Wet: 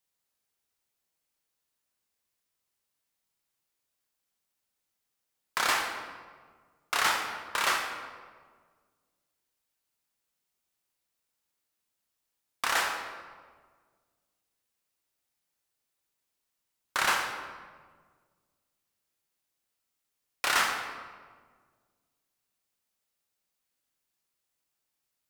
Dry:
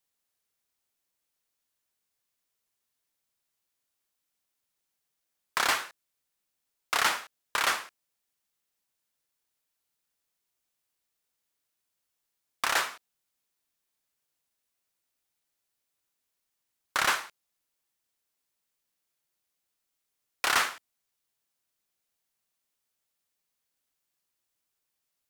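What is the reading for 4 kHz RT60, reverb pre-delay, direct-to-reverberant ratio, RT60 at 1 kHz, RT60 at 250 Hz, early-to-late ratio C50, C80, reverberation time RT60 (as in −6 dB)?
0.95 s, 15 ms, 1.5 dB, 1.5 s, 2.0 s, 4.0 dB, 6.0 dB, 1.6 s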